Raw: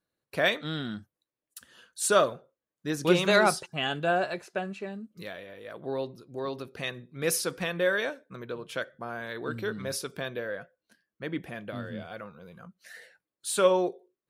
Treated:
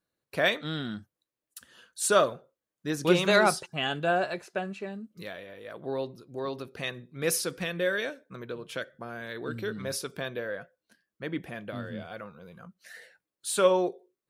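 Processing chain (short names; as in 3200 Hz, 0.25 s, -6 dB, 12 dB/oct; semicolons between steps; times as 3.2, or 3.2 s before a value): 7.33–9.76 dynamic EQ 930 Hz, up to -7 dB, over -44 dBFS, Q 1.3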